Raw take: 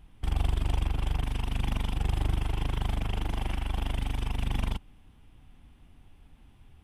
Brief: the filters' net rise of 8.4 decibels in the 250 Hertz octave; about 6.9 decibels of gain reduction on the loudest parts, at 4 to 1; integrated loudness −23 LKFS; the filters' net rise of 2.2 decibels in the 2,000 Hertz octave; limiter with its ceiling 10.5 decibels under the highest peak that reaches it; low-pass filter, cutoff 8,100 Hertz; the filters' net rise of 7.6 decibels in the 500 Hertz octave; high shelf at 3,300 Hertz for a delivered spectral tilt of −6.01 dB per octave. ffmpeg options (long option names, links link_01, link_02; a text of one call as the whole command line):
ffmpeg -i in.wav -af "lowpass=8100,equalizer=frequency=250:width_type=o:gain=9,equalizer=frequency=500:width_type=o:gain=7,equalizer=frequency=2000:width_type=o:gain=4,highshelf=frequency=3300:gain=-4,acompressor=threshold=-29dB:ratio=4,volume=18dB,alimiter=limit=-11dB:level=0:latency=1" out.wav